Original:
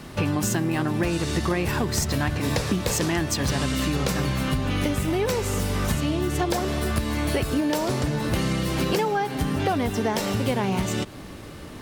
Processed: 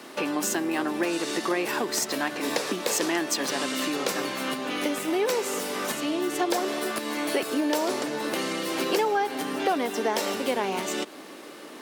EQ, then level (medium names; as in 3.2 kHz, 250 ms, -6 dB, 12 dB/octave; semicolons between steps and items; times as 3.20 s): high-pass 280 Hz 24 dB/octave; 0.0 dB